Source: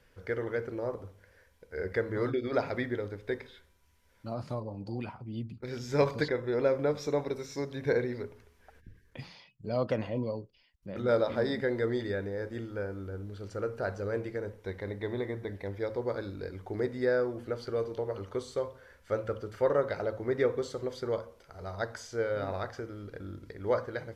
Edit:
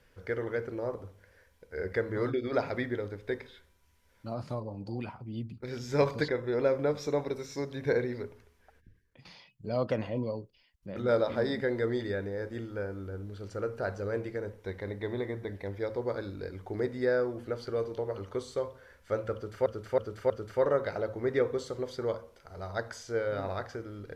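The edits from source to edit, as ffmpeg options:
-filter_complex "[0:a]asplit=5[s0][s1][s2][s3][s4];[s0]atrim=end=9.25,asetpts=PTS-STARTPTS,afade=t=out:st=8.27:d=0.98:silence=0.149624[s5];[s1]atrim=start=9.25:end=19.662,asetpts=PTS-STARTPTS,afade=t=in:d=0.004:c=hsin:silence=0.149624[s6];[s2]atrim=start=19.338:end=19.662[s7];[s3]atrim=start=19.338:end=19.662[s8];[s4]atrim=start=19.338[s9];[s5][s6]concat=n=2:v=0:a=1[s10];[s10][s7]acrossfade=d=0.004:c1=hsin:c2=hsin[s11];[s11][s8]acrossfade=d=0.004:c1=hsin:c2=hsin[s12];[s12][s9]acrossfade=d=0.004:c1=hsin:c2=hsin"

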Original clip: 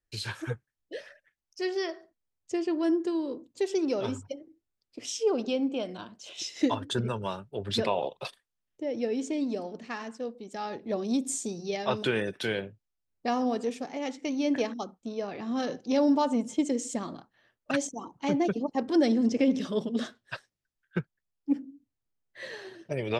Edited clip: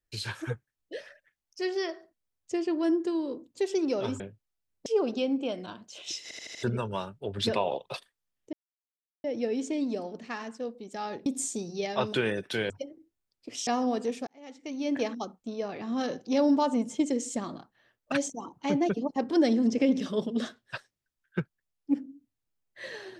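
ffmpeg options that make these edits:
-filter_complex "[0:a]asplit=13[s0][s1][s2][s3][s4][s5][s6][s7][s8][s9][s10][s11][s12];[s0]atrim=end=4.202[s13];[s1]atrim=start=12.598:end=13.262[s14];[s2]atrim=start=5.168:end=6.622[s15];[s3]atrim=start=6.538:end=6.622[s16];[s4]atrim=start=6.538:end=6.622[s17];[s5]atrim=start=6.538:end=6.622[s18];[s6]atrim=start=6.538:end=6.622[s19];[s7]atrim=start=6.938:end=8.84,asetpts=PTS-STARTPTS,afade=t=out:st=1.898:d=0.004:c=hsin,apad=pad_dur=0.71[s20];[s8]atrim=start=8.84:end=10.862,asetpts=PTS-STARTPTS,afade=t=in:d=0.004:c=hsin[s21];[s9]atrim=start=11.158:end=12.602[s22];[s10]atrim=start=4.198:end=5.172[s23];[s11]atrim=start=13.258:end=13.86,asetpts=PTS-STARTPTS,afade=t=out:st=0.598:d=0.004:c=hsin[s24];[s12]atrim=start=13.86,asetpts=PTS-STARTPTS,afade=t=in:d=0.84[s25];[s13][s14]acrossfade=d=0.004:c1=hsin:c2=hsin[s26];[s26][s15]acrossfade=d=0.004:c1=hsin:c2=hsin[s27];[s27][s16]acrossfade=d=0.004:c1=hsin:c2=hsin[s28];[s28][s17]acrossfade=d=0.004:c1=hsin:c2=hsin[s29];[s29][s18]acrossfade=d=0.004:c1=hsin:c2=hsin[s30];[s30][s19]acrossfade=d=0.004:c1=hsin:c2=hsin[s31];[s20][s21]concat=n=2:v=0:a=1[s32];[s31][s32]acrossfade=d=0.004:c1=hsin:c2=hsin[s33];[s33][s22]acrossfade=d=0.004:c1=hsin:c2=hsin[s34];[s34][s23]acrossfade=d=0.004:c1=hsin:c2=hsin[s35];[s24][s25]concat=n=2:v=0:a=1[s36];[s35][s36]acrossfade=d=0.004:c1=hsin:c2=hsin"

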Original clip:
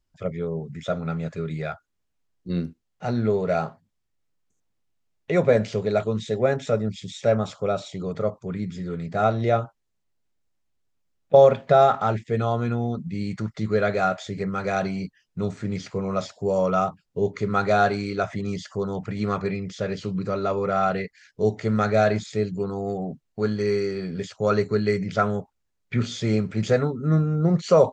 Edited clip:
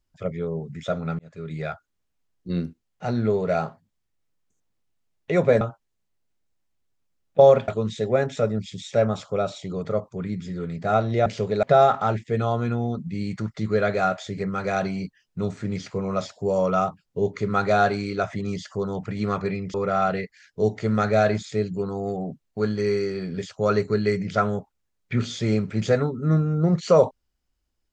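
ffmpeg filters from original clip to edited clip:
-filter_complex "[0:a]asplit=7[s0][s1][s2][s3][s4][s5][s6];[s0]atrim=end=1.19,asetpts=PTS-STARTPTS,afade=t=out:st=1.186:d=0.004:c=hsin[s7];[s1]atrim=start=1.19:end=5.612,asetpts=PTS-STARTPTS,afade=t=in:d=0.45[s8];[s2]atrim=start=9.558:end=11.632[s9];[s3]atrim=start=5.978:end=9.562[s10];[s4]atrim=start=5.608:end=5.982[s11];[s5]atrim=start=11.628:end=19.742[s12];[s6]atrim=start=20.548[s13];[s7][s8]concat=n=2:v=0:a=1[s14];[s14][s9]acrossfade=d=0.004:c1=hsin:c2=hsin[s15];[s15][s10]acrossfade=d=0.004:c1=hsin:c2=hsin[s16];[s16][s11]acrossfade=d=0.004:c1=hsin:c2=hsin[s17];[s17][s12]acrossfade=d=0.004:c1=hsin:c2=hsin[s18];[s18][s13]acrossfade=d=0.004:c1=hsin:c2=hsin"

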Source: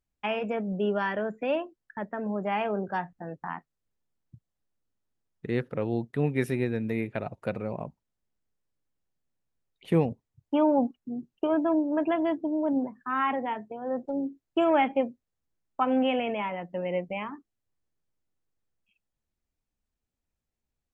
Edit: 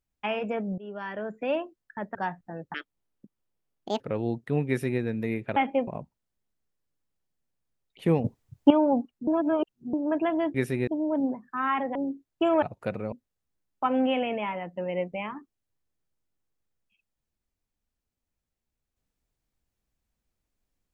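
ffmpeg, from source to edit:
-filter_complex "[0:a]asplit=16[s0][s1][s2][s3][s4][s5][s6][s7][s8][s9][s10][s11][s12][s13][s14][s15];[s0]atrim=end=0.78,asetpts=PTS-STARTPTS,afade=t=out:st=0.776:d=0.004:c=hsin:silence=0.1[s16];[s1]atrim=start=0.78:end=2.152,asetpts=PTS-STARTPTS,afade=t=in:d=0.72:silence=0.1[s17];[s2]atrim=start=2.868:end=3.464[s18];[s3]atrim=start=3.46:end=5.67,asetpts=PTS-STARTPTS,asetrate=77175,aresample=44100[s19];[s4]atrim=start=5.666:end=7.232[s20];[s5]atrim=start=14.778:end=15.092[s21];[s6]atrim=start=7.728:end=10.102[s22];[s7]atrim=start=10.098:end=10.562,asetpts=PTS-STARTPTS,volume=3.55[s23];[s8]atrim=start=10.558:end=11.132[s24];[s9]atrim=start=11.128:end=11.792,asetpts=PTS-STARTPTS,areverse[s25];[s10]atrim=start=11.788:end=12.402[s26];[s11]atrim=start=6.338:end=6.672[s27];[s12]atrim=start=12.398:end=13.482[s28];[s13]atrim=start=14.108:end=14.782[s29];[s14]atrim=start=7.228:end=7.732[s30];[s15]atrim=start=15.088[s31];[s16][s17]concat=n=2:v=0:a=1[s32];[s32][s18]acrossfade=d=0.004:c1=hsin:c2=hsin[s33];[s33][s19]acrossfade=d=0.004:c1=hsin:c2=hsin[s34];[s34][s20]acrossfade=d=0.004:c1=hsin:c2=hsin[s35];[s35][s21]acrossfade=d=0.004:c1=hsin:c2=hsin[s36];[s36][s22]acrossfade=d=0.004:c1=hsin:c2=hsin[s37];[s37][s23]acrossfade=d=0.004:c1=hsin:c2=hsin[s38];[s38][s24]acrossfade=d=0.004:c1=hsin:c2=hsin[s39];[s39][s25]acrossfade=d=0.004:c1=hsin:c2=hsin[s40];[s40][s26]acrossfade=d=0.004:c1=hsin:c2=hsin[s41];[s41][s27]acrossfade=d=0.004:c1=hsin:c2=hsin[s42];[s42][s28]acrossfade=d=0.004:c1=hsin:c2=hsin[s43];[s43][s29]acrossfade=d=0.004:c1=hsin:c2=hsin[s44];[s44][s30]acrossfade=d=0.004:c1=hsin:c2=hsin[s45];[s45][s31]acrossfade=d=0.004:c1=hsin:c2=hsin"

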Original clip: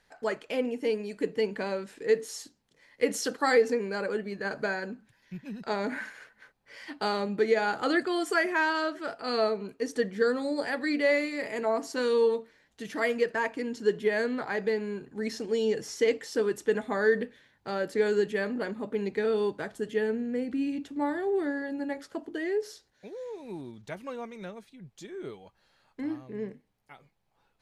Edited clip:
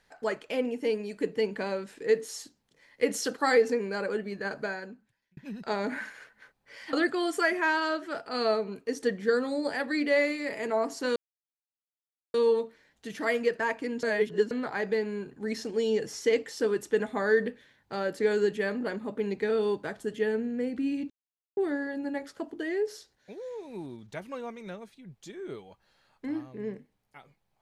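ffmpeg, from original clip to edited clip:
-filter_complex "[0:a]asplit=8[s0][s1][s2][s3][s4][s5][s6][s7];[s0]atrim=end=5.37,asetpts=PTS-STARTPTS,afade=t=out:st=4.38:d=0.99[s8];[s1]atrim=start=5.37:end=6.932,asetpts=PTS-STARTPTS,afade=t=in:d=0.004:c=hsin[s9];[s2]atrim=start=7.858:end=12.09,asetpts=PTS-STARTPTS,afade=t=out:st=4.228:d=0.004:c=hsin,apad=pad_dur=1.18[s10];[s3]atrim=start=12.09:end=13.782,asetpts=PTS-STARTPTS,afade=t=in:d=0.004:c=hsin[s11];[s4]atrim=start=13.778:end=14.262,asetpts=PTS-STARTPTS,areverse[s12];[s5]atrim=start=14.258:end=20.85,asetpts=PTS-STARTPTS,afade=t=out:st=6.588:d=0.004:c=hsin[s13];[s6]atrim=start=20.85:end=21.32,asetpts=PTS-STARTPTS,volume=0[s14];[s7]atrim=start=21.32,asetpts=PTS-STARTPTS,afade=t=in:d=0.004:c=hsin[s15];[s8][s9]concat=n=2:v=0:a=1[s16];[s10][s11]concat=n=2:v=0:a=1[s17];[s16][s17]acrossfade=d=0.004:c1=hsin:c2=hsin[s18];[s18][s12]acrossfade=d=0.004:c1=hsin:c2=hsin[s19];[s13][s14][s15]concat=n=3:v=0:a=1[s20];[s19][s20]acrossfade=d=0.004:c1=hsin:c2=hsin"

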